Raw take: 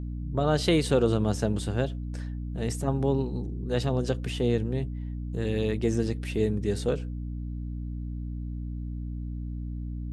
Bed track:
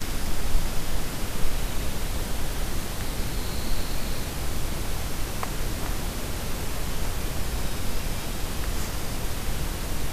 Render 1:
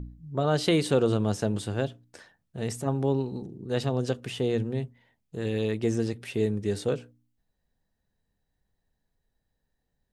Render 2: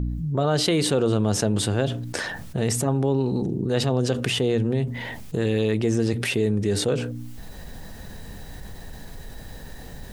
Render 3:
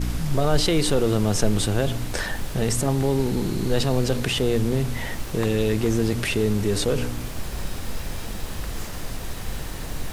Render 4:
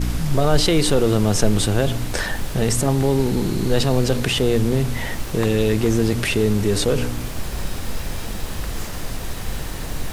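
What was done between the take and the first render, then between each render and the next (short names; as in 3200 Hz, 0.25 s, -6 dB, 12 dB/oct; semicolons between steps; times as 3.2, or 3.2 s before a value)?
de-hum 60 Hz, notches 5
fast leveller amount 70%
add bed track -3 dB
gain +3.5 dB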